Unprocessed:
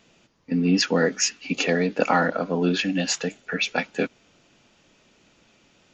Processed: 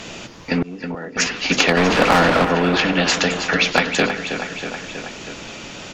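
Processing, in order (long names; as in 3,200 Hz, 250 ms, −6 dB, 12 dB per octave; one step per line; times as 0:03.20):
0:01.77–0:02.45: converter with a step at zero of −20 dBFS
mains-hum notches 50/100/150/200/250/300/350/400/450/500 Hz
treble cut that deepens with the level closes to 1,300 Hz, closed at −18 dBFS
in parallel at −4 dB: hard clipping −14 dBFS, distortion −19 dB
0:00.62–0:01.17: on the sum: gate with flip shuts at −17 dBFS, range −29 dB
on a send: repeating echo 321 ms, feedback 50%, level −16 dB
on the sum: every bin compressed towards the loudest bin 2 to 1
level +2.5 dB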